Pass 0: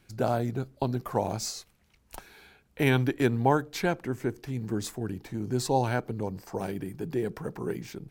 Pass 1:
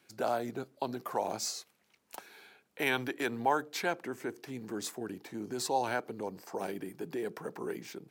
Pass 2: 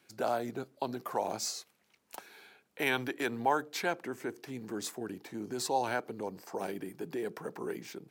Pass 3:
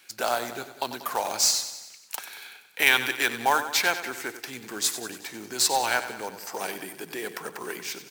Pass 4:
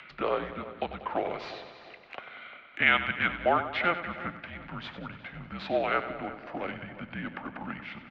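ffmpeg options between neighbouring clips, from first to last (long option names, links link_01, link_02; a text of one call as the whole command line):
ffmpeg -i in.wav -filter_complex "[0:a]highpass=280,acrossover=split=590|4400[link_01][link_02][link_03];[link_01]alimiter=level_in=5dB:limit=-24dB:level=0:latency=1,volume=-5dB[link_04];[link_04][link_02][link_03]amix=inputs=3:normalize=0,volume=-1.5dB" out.wav
ffmpeg -i in.wav -af anull out.wav
ffmpeg -i in.wav -af "tiltshelf=frequency=830:gain=-9.5,acrusher=bits=3:mode=log:mix=0:aa=0.000001,aecho=1:1:94|188|282|376|470|564:0.251|0.146|0.0845|0.049|0.0284|0.0165,volume=5.5dB" out.wav
ffmpeg -i in.wav -filter_complex "[0:a]highpass=frequency=260:width_type=q:width=0.5412,highpass=frequency=260:width_type=q:width=1.307,lowpass=frequency=3100:width_type=q:width=0.5176,lowpass=frequency=3100:width_type=q:width=0.7071,lowpass=frequency=3100:width_type=q:width=1.932,afreqshift=-180,acompressor=mode=upward:threshold=-38dB:ratio=2.5,asplit=2[link_01][link_02];[link_02]adelay=350,lowpass=frequency=1900:poles=1,volume=-14.5dB,asplit=2[link_03][link_04];[link_04]adelay=350,lowpass=frequency=1900:poles=1,volume=0.39,asplit=2[link_05][link_06];[link_06]adelay=350,lowpass=frequency=1900:poles=1,volume=0.39,asplit=2[link_07][link_08];[link_08]adelay=350,lowpass=frequency=1900:poles=1,volume=0.39[link_09];[link_01][link_03][link_05][link_07][link_09]amix=inputs=5:normalize=0,volume=-2dB" out.wav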